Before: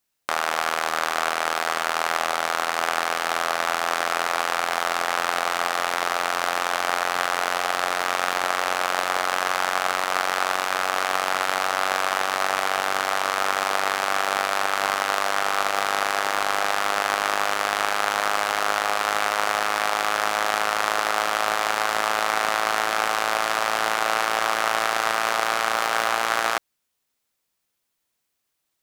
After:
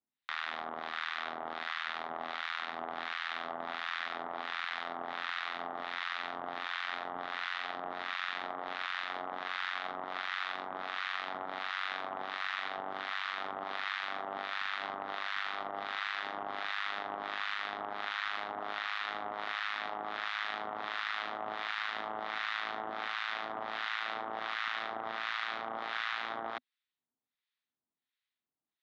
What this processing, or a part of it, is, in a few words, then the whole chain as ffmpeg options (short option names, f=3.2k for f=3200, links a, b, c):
guitar amplifier with harmonic tremolo: -filter_complex "[0:a]acrossover=split=1100[a][b];[a]aeval=exprs='val(0)*(1-1/2+1/2*cos(2*PI*1.4*n/s))':c=same[c];[b]aeval=exprs='val(0)*(1-1/2-1/2*cos(2*PI*1.4*n/s))':c=same[d];[c][d]amix=inputs=2:normalize=0,asoftclip=type=tanh:threshold=-16dB,highpass=96,equalizer=f=250:t=q:w=4:g=7,equalizer=f=520:t=q:w=4:g=-7,equalizer=f=1.9k:t=q:w=4:g=5,equalizer=f=3.7k:t=q:w=4:g=7,lowpass=f=4k:w=0.5412,lowpass=f=4k:w=1.3066,volume=-8.5dB"